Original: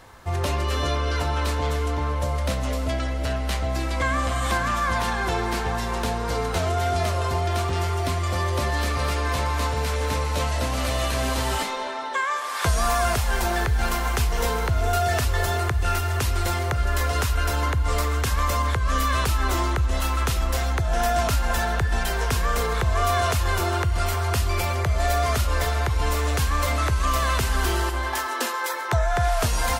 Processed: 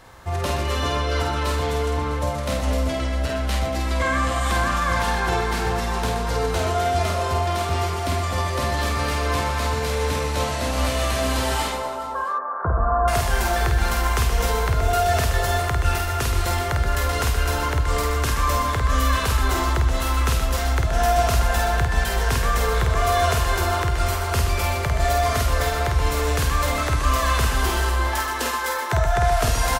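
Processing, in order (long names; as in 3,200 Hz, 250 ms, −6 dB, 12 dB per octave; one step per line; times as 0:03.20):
0:11.72–0:13.08: elliptic low-pass filter 1,400 Hz, stop band 50 dB
reverse bouncing-ball delay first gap 50 ms, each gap 1.5×, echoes 5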